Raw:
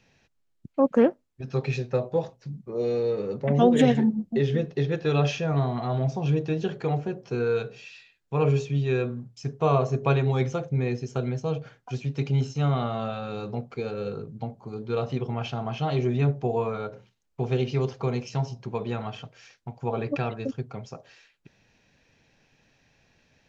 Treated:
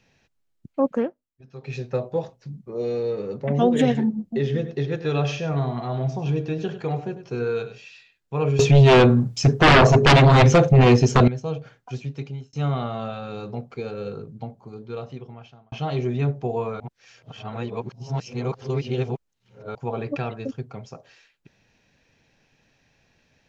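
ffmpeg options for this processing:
-filter_complex "[0:a]asettb=1/sr,asplit=3[a][b][c];[a]atrim=end=4.334[d];[b]atrim=start=4.33:end=7.78,asetpts=PTS-STARTPTS,afade=t=in:d=0.004:c=qsin,afade=t=out:st=3.446:d=0.004:c=qsin,aecho=1:1:99:0.251,atrim=end_sample=152145[e];[c]atrim=start=7.776[f];[d][e]acrossfade=d=0.004:c1=hsin:c2=qsin[g];[g][f]acrossfade=d=0.004:c1=qsin:c2=hsin,asettb=1/sr,asplit=3[h][i][j];[h]atrim=end=8.594[k];[i]atrim=start=8.59:end=11.28,asetpts=PTS-STARTPTS,afade=t=in:d=0.004:c=qsin,afade=t=out:st=2.686:d=0.004:c=qsin,aeval=exprs='0.355*sin(PI/2*5.01*val(0)/0.355)':c=same[l];[j]atrim=start=11.276[m];[k][l]acrossfade=d=0.004:c1=hsin:c2=qsin[n];[n][m]acrossfade=d=0.004:c1=qsin:c2=hsin,asplit=7[o][p][q][r][s][t][u];[o]atrim=end=1.12,asetpts=PTS-STARTPTS,afade=t=out:st=0.88:d=0.24:silence=0.211349[v];[p]atrim=start=1.12:end=1.6,asetpts=PTS-STARTPTS,volume=-13.5dB[w];[q]atrim=start=1.6:end=12.53,asetpts=PTS-STARTPTS,afade=t=in:d=0.24:silence=0.211349,afade=t=out:st=10.39:d=0.54[x];[r]atrim=start=12.53:end=15.72,asetpts=PTS-STARTPTS,afade=t=in:d=0.004:c=hsin,afade=t=out:st=1.77:d=1.42[y];[s]atrim=start=15.72:end=16.802,asetpts=PTS-STARTPTS,afade=t=in:d=0.004:c=hsin[z];[t]atrim=start=16.798:end=19.752,asetpts=PTS-STARTPTS,areverse[aa];[u]atrim=start=19.748[ab];[v][w][x][y][z]concat=n=5:v=0:a=1[ac];[ac][aa]acrossfade=d=0.004:c1=hsin:c2=hsin[ad];[ad][ab]acrossfade=d=0.004:c1=hsin:c2=hsin"

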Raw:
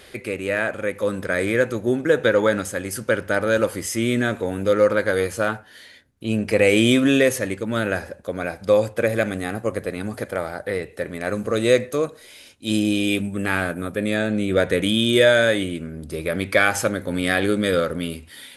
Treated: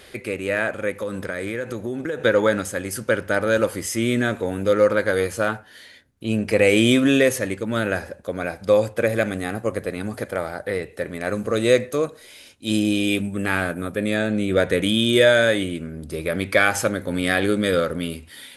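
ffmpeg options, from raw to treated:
-filter_complex "[0:a]asettb=1/sr,asplit=3[a][b][c];[a]atrim=end=0.934[d];[b]atrim=start=0.93:end=2.24,asetpts=PTS-STARTPTS,afade=t=in:d=0.004:c=qsin,afade=t=out:st=1.306:d=0.004:c=qsin,acompressor=threshold=-23dB:ratio=6:attack=3.2:release=140:knee=1:detection=peak[e];[c]atrim=start=2.236[f];[d][e]acrossfade=d=0.004:c1=hsin:c2=qsin[g];[g][f]acrossfade=d=0.004:c1=qsin:c2=hsin"

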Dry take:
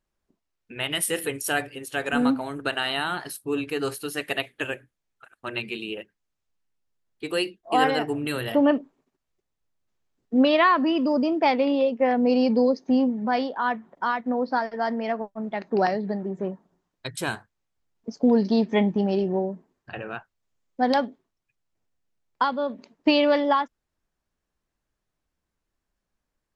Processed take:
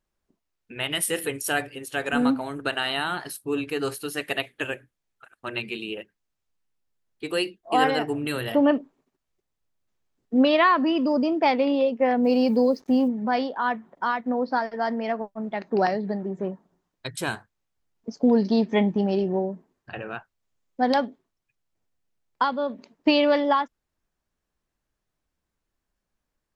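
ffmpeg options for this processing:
-filter_complex "[0:a]asettb=1/sr,asplit=3[a][b][c];[a]atrim=end=12.244[d];[b]atrim=start=12.24:end=13.08,asetpts=PTS-STARTPTS,afade=t=in:d=0.004:c=qsin,afade=t=out:st=0.836:d=0.004:c=qsin,acrusher=bits=8:mix=0:aa=0.5[e];[c]atrim=start=13.076[f];[d][e]acrossfade=d=0.004:c1=hsin:c2=qsin[g];[g][f]acrossfade=d=0.004:c1=qsin:c2=hsin"

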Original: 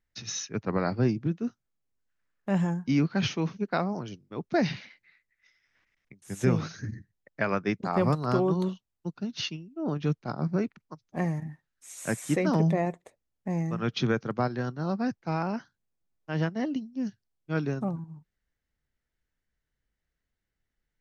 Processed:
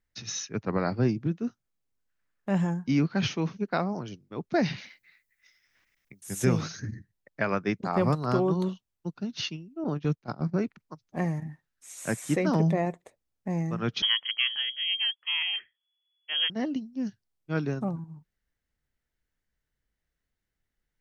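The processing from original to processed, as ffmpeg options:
-filter_complex "[0:a]asettb=1/sr,asplit=3[a][b][c];[a]atrim=end=4.784[d];[b]atrim=start=4.78:end=6.8,asetpts=PTS-STARTPTS,afade=t=in:d=0.004:c=qsin,afade=t=out:st=2.016:d=0.004:c=qsin,aemphasis=mode=production:type=50kf[e];[c]atrim=start=6.796[f];[d][e]acrossfade=d=0.004:c1=hsin:c2=qsin[g];[g][f]acrossfade=d=0.004:c1=qsin:c2=hsin,asettb=1/sr,asplit=3[h][i][j];[h]atrim=end=9.844[k];[i]atrim=start=9.84:end=10.57,asetpts=PTS-STARTPTS,afade=t=in:d=0.004:c=qsin,afade=t=out:st=0.726:d=0.004:c=qsin,agate=range=-10dB:threshold=-34dB:ratio=16:release=100:detection=peak[l];[j]atrim=start=10.566[m];[k][l]acrossfade=d=0.004:c1=hsin:c2=qsin[n];[n][m]acrossfade=d=0.004:c1=qsin:c2=hsin,asettb=1/sr,asplit=3[o][p][q];[o]atrim=end=14.024[r];[p]atrim=start=14.02:end=16.5,asetpts=PTS-STARTPTS,afade=t=in:d=0.004:c=qsin,afade=t=out:st=2.476:d=0.004:c=qsin,lowpass=f=2.9k:t=q:w=0.5098,lowpass=f=2.9k:t=q:w=0.6013,lowpass=f=2.9k:t=q:w=0.9,lowpass=f=2.9k:t=q:w=2.563,afreqshift=-3400[s];[q]atrim=start=16.496[t];[r][s]acrossfade=d=0.004:c1=hsin:c2=qsin[u];[u][t]acrossfade=d=0.004:c1=qsin:c2=hsin"

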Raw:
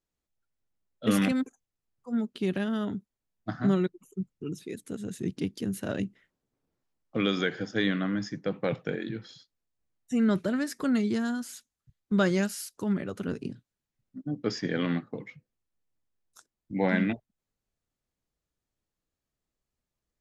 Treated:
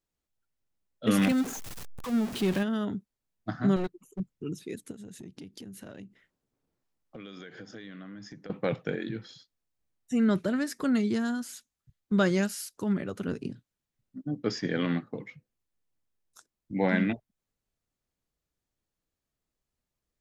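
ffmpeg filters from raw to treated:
-filter_complex "[0:a]asettb=1/sr,asplit=3[a][b][c];[a]atrim=end=1.184[d];[b]atrim=start=1.18:end=2.63,asetpts=PTS-STARTPTS,afade=t=in:d=0.004:c=qsin,afade=t=out:st=1.446:d=0.004:c=qsin,aeval=exprs='val(0)+0.5*0.0251*sgn(val(0))':c=same[e];[c]atrim=start=2.626[f];[d][e]acrossfade=d=0.004:c1=hsin:c2=qsin[g];[g][f]acrossfade=d=0.004:c1=qsin:c2=hsin,asettb=1/sr,asplit=3[h][i][j];[h]atrim=end=3.764[k];[i]atrim=start=3.76:end=4.2,asetpts=PTS-STARTPTS,afade=t=in:d=0.004:c=qsin,afade=t=out:st=0.436:d=0.004:c=qsin,aeval=exprs='clip(val(0),-1,0.0211)':c=same[l];[j]atrim=start=4.196[m];[k][l]acrossfade=d=0.004:c1=hsin:c2=qsin[n];[n][m]acrossfade=d=0.004:c1=qsin:c2=hsin,asettb=1/sr,asplit=3[o][p][q];[o]atrim=end=4.914[r];[p]atrim=start=4.91:end=8.5,asetpts=PTS-STARTPTS,afade=t=in:d=0.004:c=qsin,afade=t=out:st=3.586:d=0.004:c=qsin,acompressor=threshold=-41dB:ratio=8:attack=3.2:release=140:knee=1:detection=peak[s];[q]atrim=start=8.496[t];[r][s]acrossfade=d=0.004:c1=hsin:c2=qsin[u];[u][t]acrossfade=d=0.004:c1=qsin:c2=hsin"

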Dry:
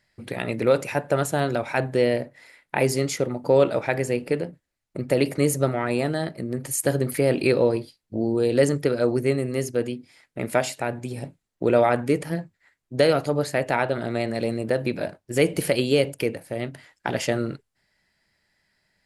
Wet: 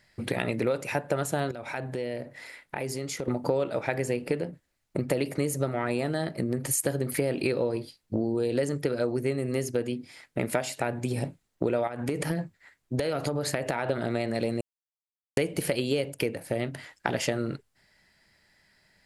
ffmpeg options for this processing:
-filter_complex "[0:a]asettb=1/sr,asplit=3[a][b][c];[a]atrim=end=1.514[d];[b]atrim=start=1.51:end=3.28,asetpts=PTS-STARTPTS,afade=t=in:d=0.004:c=qsin,afade=t=out:st=1.766:d=0.004:c=qsin,acompressor=threshold=-40dB:ratio=3:attack=3.2:release=140:knee=1:detection=peak[e];[c]atrim=start=3.276[f];[d][e]acrossfade=d=0.004:c1=hsin:c2=qsin[g];[g][f]acrossfade=d=0.004:c1=qsin:c2=hsin,asettb=1/sr,asplit=3[h][i][j];[h]atrim=end=11.874[k];[i]atrim=start=11.87:end=13.9,asetpts=PTS-STARTPTS,afade=t=in:d=0.004:c=qsin,afade=t=out:st=2.026:d=0.004:c=qsin,acompressor=threshold=-25dB:ratio=12:attack=3.2:release=140:knee=1:detection=peak[l];[j]atrim=start=13.896[m];[k][l]acrossfade=d=0.004:c1=hsin:c2=qsin[n];[n][m]acrossfade=d=0.004:c1=qsin:c2=hsin,asplit=3[o][p][q];[o]atrim=end=14.61,asetpts=PTS-STARTPTS,afade=t=out:st=14.606:d=0.004:c=hsin[r];[p]atrim=start=14.61:end=15.37,asetpts=PTS-STARTPTS,volume=0[s];[q]atrim=start=15.37,asetpts=PTS-STARTPTS,afade=t=in:d=0.004:c=hsin[t];[r][s][t]concat=n=3:v=0:a=1,acompressor=threshold=-30dB:ratio=6,volume=5.5dB"

